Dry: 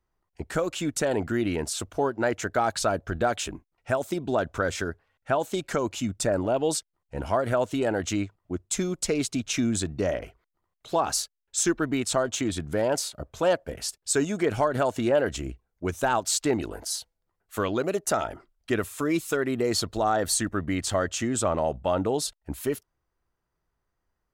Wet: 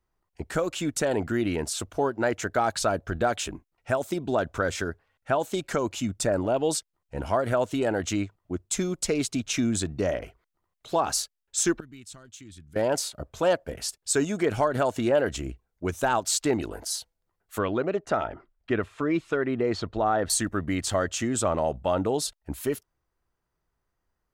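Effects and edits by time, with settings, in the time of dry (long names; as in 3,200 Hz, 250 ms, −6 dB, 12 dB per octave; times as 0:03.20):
0:11.80–0:12.76: guitar amp tone stack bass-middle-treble 6-0-2
0:17.58–0:20.30: low-pass filter 2,700 Hz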